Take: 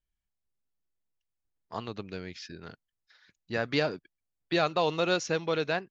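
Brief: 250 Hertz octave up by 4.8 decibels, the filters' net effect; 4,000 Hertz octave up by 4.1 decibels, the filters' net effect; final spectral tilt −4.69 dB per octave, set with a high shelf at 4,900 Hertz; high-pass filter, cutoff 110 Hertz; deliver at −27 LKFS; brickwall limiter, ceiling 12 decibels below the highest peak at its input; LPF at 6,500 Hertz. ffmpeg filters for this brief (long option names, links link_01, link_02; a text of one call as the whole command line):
ffmpeg -i in.wav -af "highpass=110,lowpass=6500,equalizer=frequency=250:width_type=o:gain=7.5,equalizer=frequency=4000:width_type=o:gain=6.5,highshelf=frequency=4900:gain=-3.5,volume=8.5dB,alimiter=limit=-13.5dB:level=0:latency=1" out.wav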